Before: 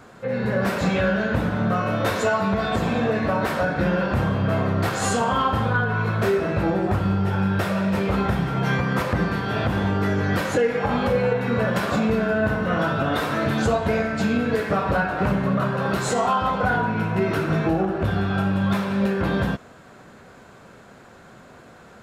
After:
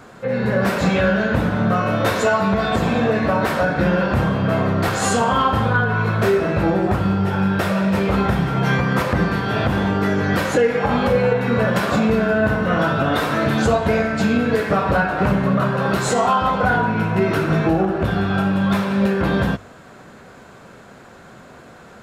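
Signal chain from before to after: hum notches 50/100 Hz; trim +4 dB

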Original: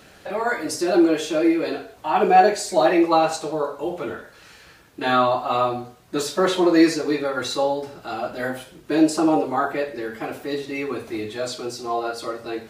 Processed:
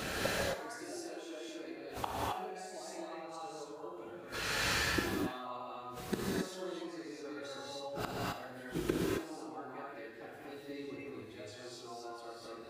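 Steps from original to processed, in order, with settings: 0.82–1.49 s: high-pass 310 Hz 12 dB/octave; 10.69–11.10 s: bass shelf 480 Hz +9.5 dB; compression 5:1, threshold -23 dBFS, peak gain reduction 13 dB; inverted gate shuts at -29 dBFS, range -32 dB; thinning echo 61 ms, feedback 53%, level -11.5 dB; gated-style reverb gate 290 ms rising, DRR -4.5 dB; trim +9 dB

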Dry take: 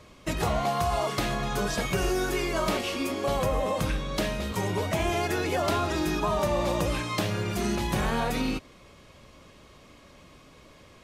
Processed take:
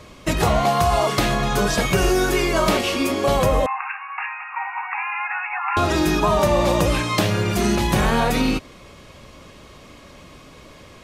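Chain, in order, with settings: 3.66–5.77 s: brick-wall FIR band-pass 740–2800 Hz; trim +8.5 dB

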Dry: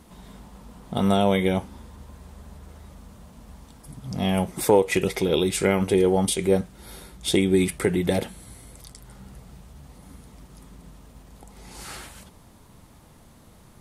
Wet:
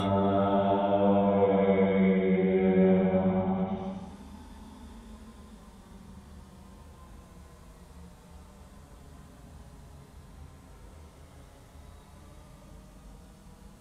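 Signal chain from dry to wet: flange 0.57 Hz, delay 4.5 ms, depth 3.3 ms, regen +37%; Paulstretch 6.8×, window 0.25 s, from 1.08 s; low-pass that closes with the level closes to 1.6 kHz, closed at -23.5 dBFS

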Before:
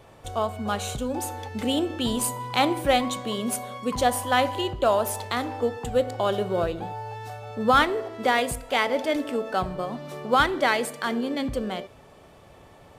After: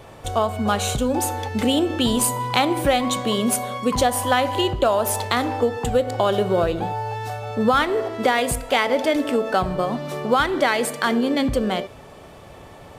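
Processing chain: compression 5:1, threshold -23 dBFS, peak gain reduction 8.5 dB; trim +8 dB

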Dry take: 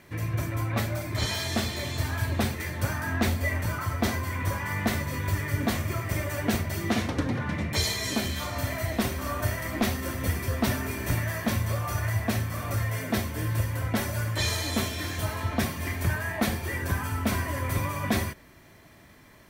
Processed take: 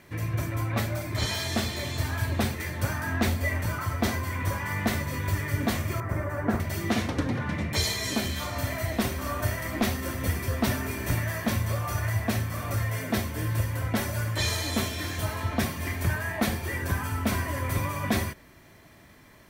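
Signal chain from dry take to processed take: 6.00–6.60 s: resonant high shelf 2.1 kHz -13.5 dB, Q 1.5

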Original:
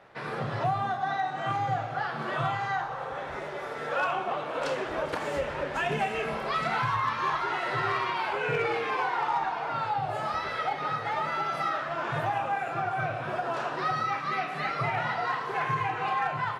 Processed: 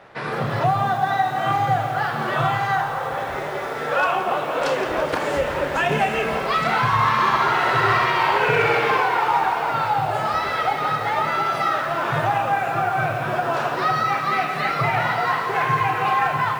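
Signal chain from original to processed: 6.86–8.98 s: multi-head delay 64 ms, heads first and second, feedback 43%, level -6.5 dB; bit-crushed delay 169 ms, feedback 80%, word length 8-bit, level -12 dB; trim +8 dB

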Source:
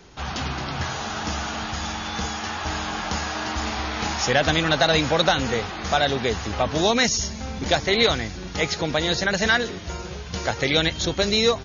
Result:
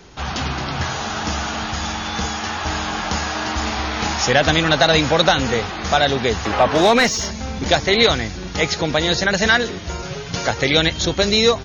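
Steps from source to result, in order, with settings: 6.45–7.31 s: overdrive pedal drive 16 dB, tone 1.5 kHz, clips at -7 dBFS; 10.02–10.48 s: comb 7.2 ms, depth 87%; trim +4.5 dB

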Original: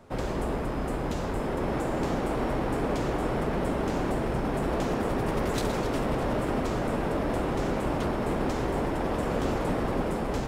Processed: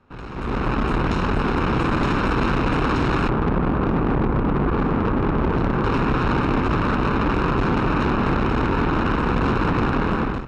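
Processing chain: comb filter that takes the minimum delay 0.75 ms; low-pass 3.3 kHz 12 dB/octave, from 3.29 s 1 kHz, from 5.84 s 2.1 kHz; valve stage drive 33 dB, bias 0.7; level rider gain up to 16.5 dB

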